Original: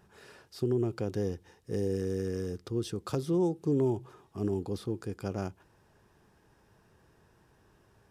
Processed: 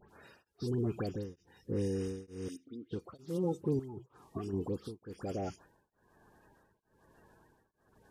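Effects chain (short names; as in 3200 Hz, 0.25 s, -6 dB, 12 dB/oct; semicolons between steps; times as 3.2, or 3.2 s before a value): bin magnitudes rounded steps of 30 dB; 0.59–1.88 low shelf 180 Hz +4.5 dB; limiter -25 dBFS, peak gain reduction 8 dB; 2.48–2.91 vowel filter i; 3.79–4.53 negative-ratio compressor -40 dBFS, ratio -1; dispersion highs, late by 95 ms, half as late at 2400 Hz; beating tremolo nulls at 1.1 Hz; gain +1.5 dB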